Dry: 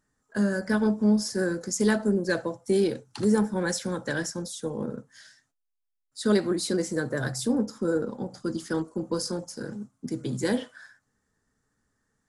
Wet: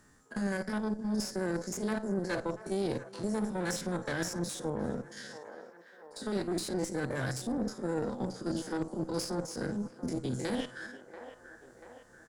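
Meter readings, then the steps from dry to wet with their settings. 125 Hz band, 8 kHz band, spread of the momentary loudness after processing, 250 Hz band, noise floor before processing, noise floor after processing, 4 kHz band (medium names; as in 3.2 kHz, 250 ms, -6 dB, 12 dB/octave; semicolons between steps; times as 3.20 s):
-5.0 dB, -6.5 dB, 15 LU, -7.5 dB, -80 dBFS, -57 dBFS, -6.0 dB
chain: spectrogram pixelated in time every 50 ms; reverse; compression 6:1, threshold -34 dBFS, peak gain reduction 15.5 dB; reverse; echo from a far wall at 60 m, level -22 dB; Chebyshev shaper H 4 -15 dB, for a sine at -24 dBFS; on a send: feedback echo behind a band-pass 687 ms, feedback 41%, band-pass 920 Hz, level -14 dB; on the sum: three bands compressed up and down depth 40%; trim +3 dB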